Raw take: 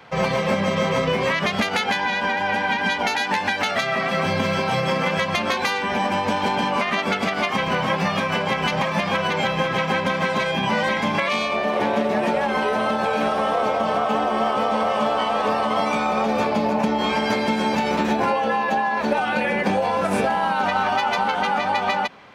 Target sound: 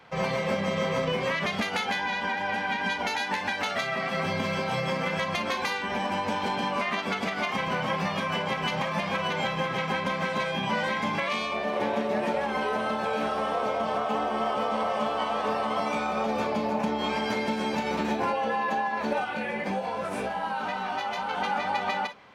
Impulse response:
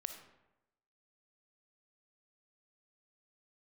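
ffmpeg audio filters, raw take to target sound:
-filter_complex "[0:a]asettb=1/sr,asplit=3[a][b][c];[a]atrim=end=19.244[d];[b]atrim=start=19.24:end=21.31,asetpts=PTS-STARTPTS,afade=t=in:d=0.004:c=qsin,afade=t=out:st=2.066:d=0.004:c=qsin,flanger=delay=15.5:depth=3.2:speed=1.9[e];[c]atrim=start=21.306[f];[d][e]acrossfade=d=0.004:c1=hsin:c2=qsin[g];[g][f]acrossfade=d=0.004:c1=qsin:c2=hsin[h];[1:a]atrim=start_sample=2205,afade=t=out:st=0.15:d=0.01,atrim=end_sample=7056,asetrate=70560,aresample=44100[i];[h][i]afir=irnorm=-1:irlink=0"

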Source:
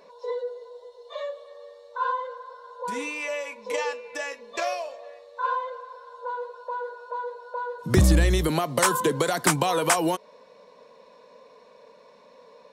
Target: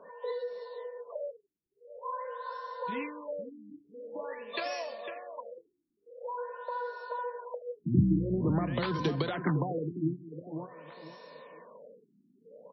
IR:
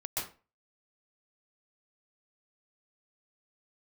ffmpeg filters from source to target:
-filter_complex "[0:a]highpass=f=120:w=0.5412,highpass=f=120:w=1.3066,acrossover=split=280[a][b];[b]acompressor=threshold=-35dB:ratio=5[c];[a][c]amix=inputs=2:normalize=0,crystalizer=i=2.5:c=0,aeval=exprs='val(0)+0.00126*sin(2*PI*1800*n/s)':c=same,asplit=2[d][e];[e]adelay=502,lowpass=f=4.9k:p=1,volume=-8.5dB,asplit=2[f][g];[g]adelay=502,lowpass=f=4.9k:p=1,volume=0.26,asplit=2[h][i];[i]adelay=502,lowpass=f=4.9k:p=1,volume=0.26[j];[d][f][h][j]amix=inputs=4:normalize=0,afftfilt=real='re*lt(b*sr/1024,350*pow(5900/350,0.5+0.5*sin(2*PI*0.47*pts/sr)))':imag='im*lt(b*sr/1024,350*pow(5900/350,0.5+0.5*sin(2*PI*0.47*pts/sr)))':win_size=1024:overlap=0.75"

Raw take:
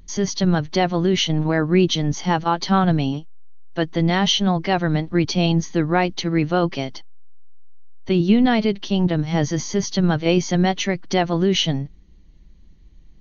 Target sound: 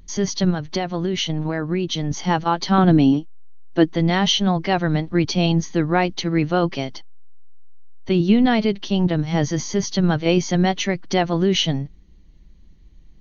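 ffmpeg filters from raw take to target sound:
-filter_complex "[0:a]asettb=1/sr,asplit=3[a][b][c];[a]atrim=end=0.504[d];[b]atrim=start=0.5:end=2.11,asetpts=PTS-STARTPTS,afade=t=in:d=0.004:c=qsin,afade=t=out:st=1.606:d=0.004:c=qsin,acompressor=threshold=-19dB:ratio=6[e];[c]atrim=start=2.106[f];[d][e]acrossfade=d=0.004:c1=hsin:c2=qsin[g];[g][f]acrossfade=d=0.004:c1=qsin:c2=hsin,asettb=1/sr,asplit=3[h][i][j];[h]atrim=end=2.784[k];[i]atrim=start=2.78:end=3.89,asetpts=PTS-STARTPTS,afade=t=in:d=0.004:c=qsin,afade=t=out:st=1.106:d=0.004:c=qsin,equalizer=f=300:t=o:w=0.89:g=10.5[l];[j]atrim=start=3.886[m];[k][l]acrossfade=d=0.004:c1=hsin:c2=qsin[n];[n][m]acrossfade=d=0.004:c1=qsin:c2=hsin"

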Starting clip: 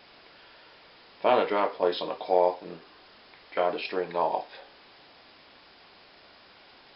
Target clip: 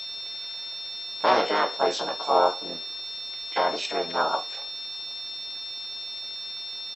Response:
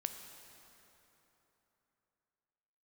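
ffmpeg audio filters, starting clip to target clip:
-filter_complex "[0:a]aeval=exprs='val(0)+0.0178*sin(2*PI*3600*n/s)':c=same,asplit=4[a][b][c][d];[b]asetrate=33038,aresample=44100,atempo=1.33484,volume=-18dB[e];[c]asetrate=52444,aresample=44100,atempo=0.840896,volume=-6dB[f];[d]asetrate=66075,aresample=44100,atempo=0.66742,volume=0dB[g];[a][e][f][g]amix=inputs=4:normalize=0,volume=-1.5dB"

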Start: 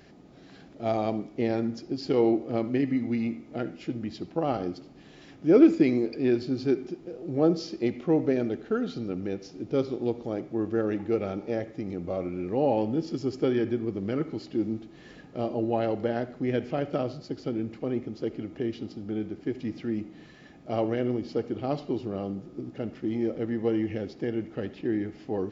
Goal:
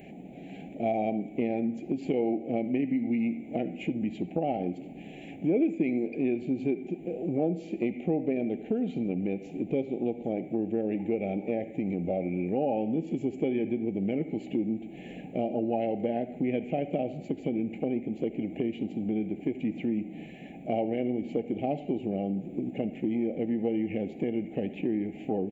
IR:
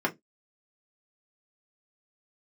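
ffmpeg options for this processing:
-af "firequalizer=gain_entry='entry(120,0);entry(180,11);entry(360,5);entry(780,10);entry(1100,-24);entry(2300,12);entry(5100,-23);entry(7800,9)':delay=0.05:min_phase=1,acompressor=threshold=-28dB:ratio=3"

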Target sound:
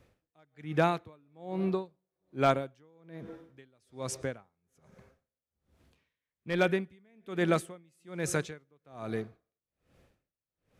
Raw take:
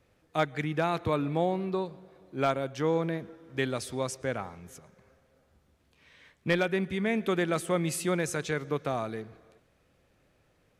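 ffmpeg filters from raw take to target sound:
-af "lowshelf=f=420:g=3,aeval=exprs='val(0)*pow(10,-39*(0.5-0.5*cos(2*PI*1.2*n/s))/20)':c=same,volume=2dB"

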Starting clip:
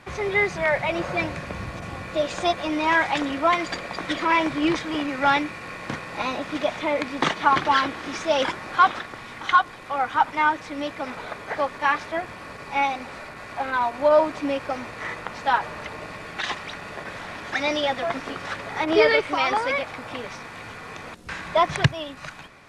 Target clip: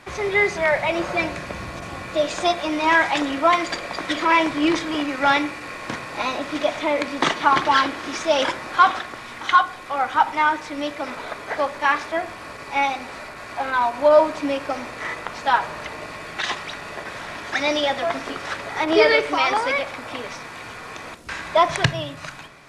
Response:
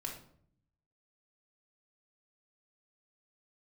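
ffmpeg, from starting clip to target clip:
-filter_complex "[0:a]bass=f=250:g=-4,treble=f=4k:g=3,asplit=2[a][b];[1:a]atrim=start_sample=2205[c];[b][c]afir=irnorm=-1:irlink=0,volume=-6.5dB[d];[a][d]amix=inputs=2:normalize=0"

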